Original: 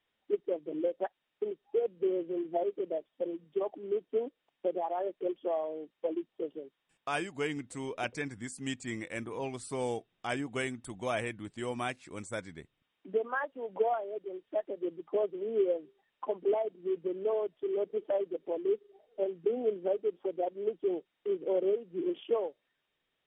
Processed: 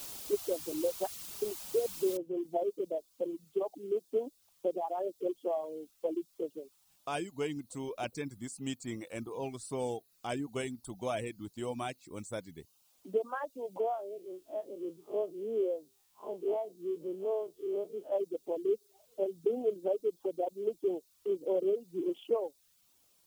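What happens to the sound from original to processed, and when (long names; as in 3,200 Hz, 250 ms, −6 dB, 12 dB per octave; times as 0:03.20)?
0:02.17: noise floor change −43 dB −67 dB
0:13.80–0:18.12: spectrum smeared in time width 82 ms
whole clip: reverb reduction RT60 0.52 s; parametric band 1,800 Hz −10 dB 0.96 octaves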